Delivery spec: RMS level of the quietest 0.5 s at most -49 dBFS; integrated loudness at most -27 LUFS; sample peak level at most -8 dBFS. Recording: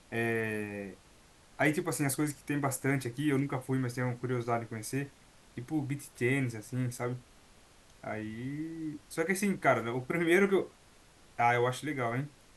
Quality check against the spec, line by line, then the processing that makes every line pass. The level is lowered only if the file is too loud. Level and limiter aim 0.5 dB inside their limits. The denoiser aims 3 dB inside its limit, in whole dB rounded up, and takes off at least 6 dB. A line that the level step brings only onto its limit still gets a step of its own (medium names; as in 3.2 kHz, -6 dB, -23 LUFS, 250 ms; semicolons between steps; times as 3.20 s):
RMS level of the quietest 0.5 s -59 dBFS: pass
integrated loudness -32.5 LUFS: pass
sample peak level -12.5 dBFS: pass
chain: none needed